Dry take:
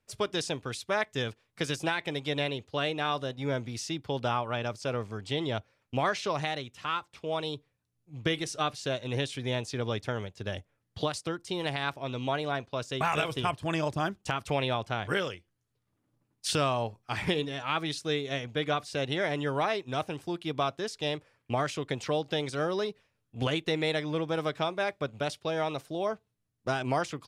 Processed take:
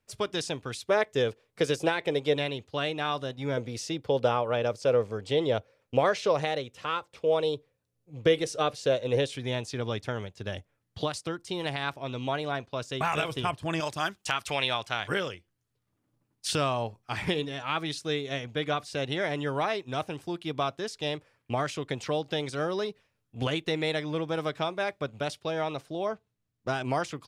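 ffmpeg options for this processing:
-filter_complex "[0:a]asettb=1/sr,asplit=3[s0][s1][s2];[s0]atrim=end=0.854[s3];[s1]atrim=start=0.85:end=2.36,asetpts=PTS-STARTPTS,afade=t=in:d=0.004:c=qsin,afade=t=out:st=1.506:d=0.004:c=qsin,equalizer=f=470:t=o:w=0.77:g=11[s4];[s2]atrim=start=2.356[s5];[s3][s4]acrossfade=d=0.004:c1=hsin:c2=qsin[s6];[s6][s5]acrossfade=d=0.004:c1=qsin:c2=hsin,asettb=1/sr,asplit=3[s7][s8][s9];[s7]atrim=end=3.574[s10];[s8]atrim=start=3.57:end=9.36,asetpts=PTS-STARTPTS,afade=t=in:d=0.004:c=qsin,afade=t=out:st=5.786:d=0.004:c=qsin,equalizer=f=500:t=o:w=0.54:g=12.5[s11];[s9]atrim=start=9.356[s12];[s10][s11]acrossfade=d=0.004:c1=hsin:c2=qsin[s13];[s13][s12]acrossfade=d=0.004:c1=qsin:c2=hsin,asettb=1/sr,asplit=3[s14][s15][s16];[s14]atrim=end=13.804[s17];[s15]atrim=start=13.8:end=15.09,asetpts=PTS-STARTPTS,afade=t=in:d=0.004:c=qsin,afade=t=out:st=1.286:d=0.004:c=qsin,tiltshelf=f=850:g=-7.5[s18];[s16]atrim=start=15.086[s19];[s17][s18]acrossfade=d=0.004:c1=hsin:c2=qsin[s20];[s20][s19]acrossfade=d=0.004:c1=qsin:c2=hsin,asettb=1/sr,asplit=3[s21][s22][s23];[s21]atrim=end=25.524[s24];[s22]atrim=start=25.52:end=26.74,asetpts=PTS-STARTPTS,afade=t=in:d=0.004:c=qsin,afade=t=out:st=1.216:d=0.004:c=qsin,highshelf=f=10000:g=-10[s25];[s23]atrim=start=26.736[s26];[s24][s25]acrossfade=d=0.004:c1=hsin:c2=qsin[s27];[s27][s26]acrossfade=d=0.004:c1=qsin:c2=hsin"

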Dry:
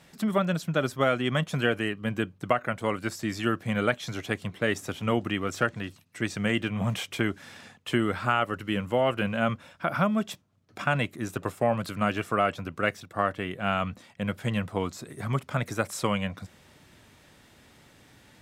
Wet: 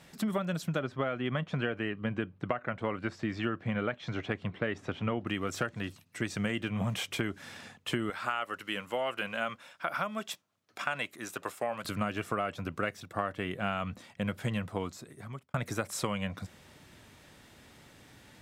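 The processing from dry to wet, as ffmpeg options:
-filter_complex "[0:a]asettb=1/sr,asplit=3[s0][s1][s2];[s0]atrim=end=0.794[s3];[s1]atrim=start=0.79:end=5.27,asetpts=PTS-STARTPTS,afade=t=in:d=0.004:c=qsin,afade=t=out:st=4.476:d=0.004:c=qsin,lowpass=2900[s4];[s2]atrim=start=5.266[s5];[s3][s4]acrossfade=d=0.004:c1=hsin:c2=qsin[s6];[s6][s5]acrossfade=d=0.004:c1=qsin:c2=hsin,asettb=1/sr,asplit=3[s7][s8][s9];[s7]atrim=end=8.104[s10];[s8]atrim=start=8.1:end=11.85,asetpts=PTS-STARTPTS,afade=t=in:d=0.004:c=qsin,afade=t=out:st=3.746:d=0.004:c=qsin,highpass=f=890:p=1[s11];[s9]atrim=start=11.846[s12];[s10][s11]acrossfade=d=0.004:c1=hsin:c2=qsin[s13];[s13][s12]acrossfade=d=0.004:c1=qsin:c2=hsin,asplit=2[s14][s15];[s14]atrim=end=15.54,asetpts=PTS-STARTPTS,afade=t=out:st=14.44:d=1.1[s16];[s15]atrim=start=15.54,asetpts=PTS-STARTPTS,afade=t=in:d=0.004:c=hsin[s17];[s16][s17]concat=n=2:v=0:a=1,acompressor=threshold=0.0398:ratio=6"

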